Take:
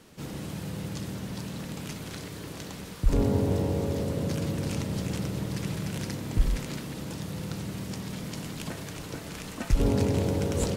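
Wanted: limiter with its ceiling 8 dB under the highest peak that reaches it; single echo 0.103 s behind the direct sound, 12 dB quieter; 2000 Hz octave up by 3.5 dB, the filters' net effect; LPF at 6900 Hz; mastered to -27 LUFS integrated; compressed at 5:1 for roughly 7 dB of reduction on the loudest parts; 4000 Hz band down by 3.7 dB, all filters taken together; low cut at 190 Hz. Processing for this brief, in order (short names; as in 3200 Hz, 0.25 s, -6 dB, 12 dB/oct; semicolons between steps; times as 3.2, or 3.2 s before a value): HPF 190 Hz; LPF 6900 Hz; bell 2000 Hz +6 dB; bell 4000 Hz -6.5 dB; compressor 5:1, threshold -31 dBFS; limiter -29 dBFS; echo 0.103 s -12 dB; gain +11.5 dB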